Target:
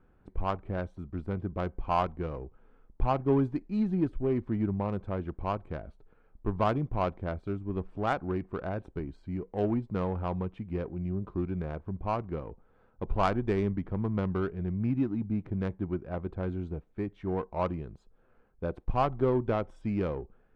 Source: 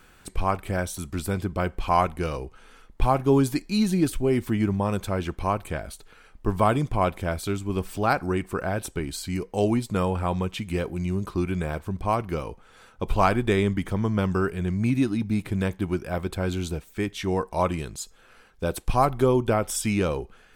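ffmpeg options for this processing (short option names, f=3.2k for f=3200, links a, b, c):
-af "adynamicsmooth=sensitivity=0.5:basefreq=830,volume=-5.5dB"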